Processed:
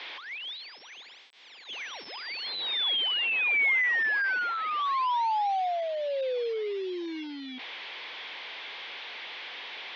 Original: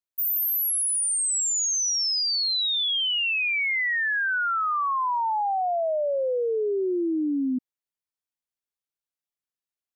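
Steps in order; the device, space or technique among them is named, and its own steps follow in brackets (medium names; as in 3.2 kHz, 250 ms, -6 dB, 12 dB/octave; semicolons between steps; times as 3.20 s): digital answering machine (band-pass 320–3300 Hz; one-bit delta coder 32 kbps, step -35 dBFS; cabinet simulation 490–3900 Hz, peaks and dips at 630 Hz -5 dB, 1.3 kHz -7 dB, 2.2 kHz +5 dB, 3.4 kHz +6 dB)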